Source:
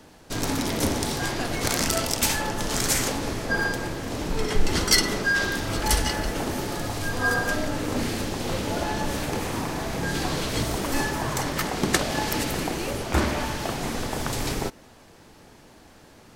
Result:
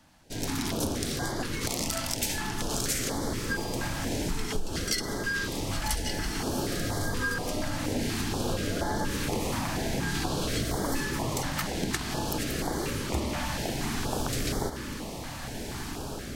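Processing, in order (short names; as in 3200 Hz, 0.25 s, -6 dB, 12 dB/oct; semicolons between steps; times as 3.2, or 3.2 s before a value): AGC gain up to 12.5 dB; on a send: diffused feedback echo 1.5 s, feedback 66%, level -11.5 dB; on the sum: compressor 6:1, threshold -17 dBFS, peak gain reduction 10.5 dB; stepped notch 4.2 Hz 420–2600 Hz; gain -8 dB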